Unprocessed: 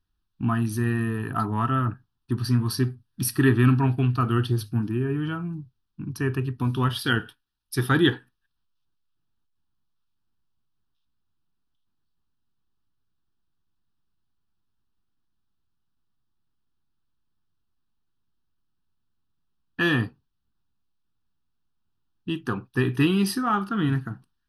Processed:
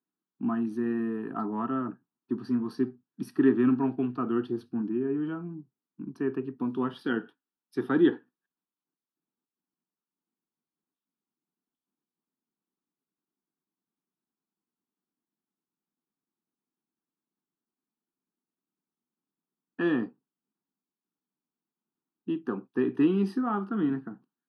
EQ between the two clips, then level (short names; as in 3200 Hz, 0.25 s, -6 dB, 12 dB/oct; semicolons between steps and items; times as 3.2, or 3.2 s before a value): HPF 200 Hz 24 dB/oct; band-pass 300 Hz, Q 0.63; 0.0 dB